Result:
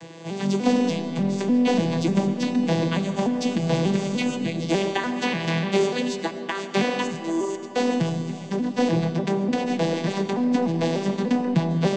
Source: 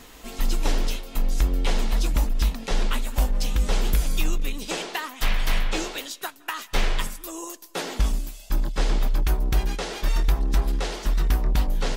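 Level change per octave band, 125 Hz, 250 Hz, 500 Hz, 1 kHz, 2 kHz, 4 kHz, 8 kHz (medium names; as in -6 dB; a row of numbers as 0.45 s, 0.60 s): +1.5 dB, +13.5 dB, +10.5 dB, +5.0 dB, +2.0 dB, 0.0 dB, -3.5 dB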